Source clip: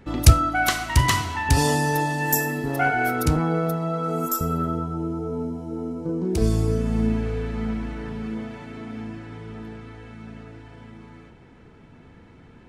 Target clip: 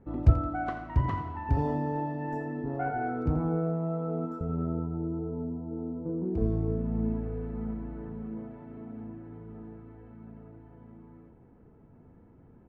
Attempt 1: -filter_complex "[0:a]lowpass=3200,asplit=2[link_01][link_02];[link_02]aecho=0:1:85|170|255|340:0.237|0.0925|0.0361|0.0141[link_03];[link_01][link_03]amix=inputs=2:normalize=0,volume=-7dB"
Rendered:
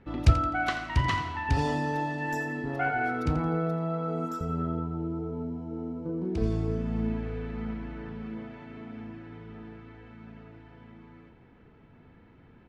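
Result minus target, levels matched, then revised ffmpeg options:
4,000 Hz band +19.0 dB
-filter_complex "[0:a]lowpass=860,asplit=2[link_01][link_02];[link_02]aecho=0:1:85|170|255|340:0.237|0.0925|0.0361|0.0141[link_03];[link_01][link_03]amix=inputs=2:normalize=0,volume=-7dB"

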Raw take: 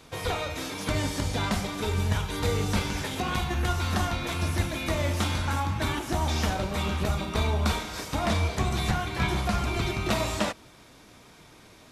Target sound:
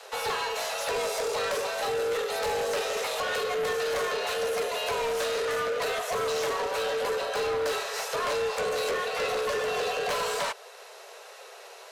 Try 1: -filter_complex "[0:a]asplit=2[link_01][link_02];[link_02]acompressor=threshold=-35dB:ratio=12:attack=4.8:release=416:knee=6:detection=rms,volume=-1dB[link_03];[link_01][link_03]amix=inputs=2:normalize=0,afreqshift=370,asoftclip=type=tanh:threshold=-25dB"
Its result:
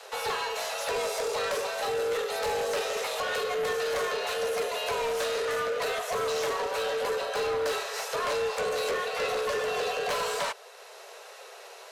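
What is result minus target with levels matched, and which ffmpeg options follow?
downward compressor: peak gain reduction +7 dB
-filter_complex "[0:a]asplit=2[link_01][link_02];[link_02]acompressor=threshold=-27.5dB:ratio=12:attack=4.8:release=416:knee=6:detection=rms,volume=-1dB[link_03];[link_01][link_03]amix=inputs=2:normalize=0,afreqshift=370,asoftclip=type=tanh:threshold=-25dB"

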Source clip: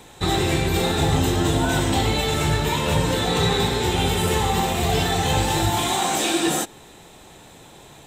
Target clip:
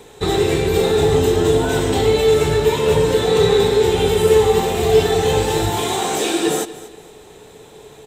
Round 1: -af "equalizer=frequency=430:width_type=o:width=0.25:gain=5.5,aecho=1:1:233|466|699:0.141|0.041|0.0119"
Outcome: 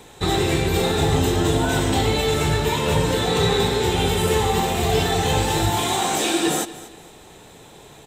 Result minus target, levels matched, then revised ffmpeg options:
500 Hz band −4.5 dB
-af "equalizer=frequency=430:width_type=o:width=0.25:gain=17,aecho=1:1:233|466|699:0.141|0.041|0.0119"

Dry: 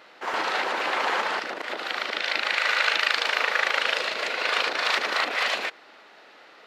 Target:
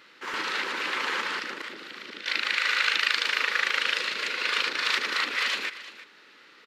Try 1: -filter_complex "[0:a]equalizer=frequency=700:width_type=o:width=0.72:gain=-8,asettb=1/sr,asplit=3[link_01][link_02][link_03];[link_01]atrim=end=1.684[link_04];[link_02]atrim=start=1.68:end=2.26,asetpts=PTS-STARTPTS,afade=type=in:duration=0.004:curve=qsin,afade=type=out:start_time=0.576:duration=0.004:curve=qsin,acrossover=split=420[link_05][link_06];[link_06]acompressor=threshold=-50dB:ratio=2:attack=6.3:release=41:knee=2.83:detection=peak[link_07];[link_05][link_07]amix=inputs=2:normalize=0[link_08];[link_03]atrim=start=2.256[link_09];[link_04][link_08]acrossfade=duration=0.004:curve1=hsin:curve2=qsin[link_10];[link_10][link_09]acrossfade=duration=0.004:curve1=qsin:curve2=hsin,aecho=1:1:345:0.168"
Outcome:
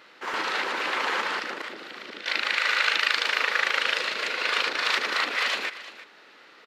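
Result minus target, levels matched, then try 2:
500 Hz band +4.0 dB
-filter_complex "[0:a]equalizer=frequency=700:width_type=o:width=0.72:gain=-19.5,asettb=1/sr,asplit=3[link_01][link_02][link_03];[link_01]atrim=end=1.684[link_04];[link_02]atrim=start=1.68:end=2.26,asetpts=PTS-STARTPTS,afade=type=in:duration=0.004:curve=qsin,afade=type=out:start_time=0.576:duration=0.004:curve=qsin,acrossover=split=420[link_05][link_06];[link_06]acompressor=threshold=-50dB:ratio=2:attack=6.3:release=41:knee=2.83:detection=peak[link_07];[link_05][link_07]amix=inputs=2:normalize=0[link_08];[link_03]atrim=start=2.256[link_09];[link_04][link_08]acrossfade=duration=0.004:curve1=hsin:curve2=qsin[link_10];[link_10][link_09]acrossfade=duration=0.004:curve1=qsin:curve2=hsin,aecho=1:1:345:0.168"

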